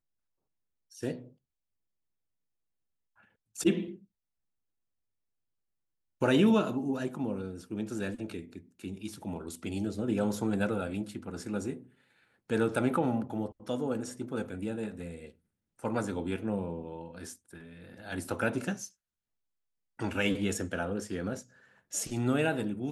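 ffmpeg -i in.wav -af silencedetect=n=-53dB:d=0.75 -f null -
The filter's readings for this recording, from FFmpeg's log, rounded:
silence_start: 0.00
silence_end: 0.91 | silence_duration: 0.91
silence_start: 1.33
silence_end: 3.21 | silence_duration: 1.88
silence_start: 4.04
silence_end: 6.21 | silence_duration: 2.17
silence_start: 18.90
silence_end: 19.99 | silence_duration: 1.09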